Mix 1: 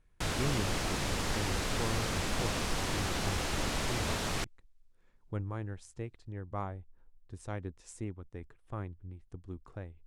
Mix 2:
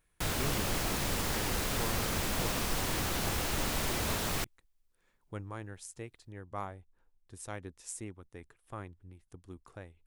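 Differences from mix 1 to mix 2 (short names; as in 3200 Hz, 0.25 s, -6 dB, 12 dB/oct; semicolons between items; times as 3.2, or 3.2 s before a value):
speech: add tilt +2 dB/oct; master: remove LPF 8300 Hz 12 dB/oct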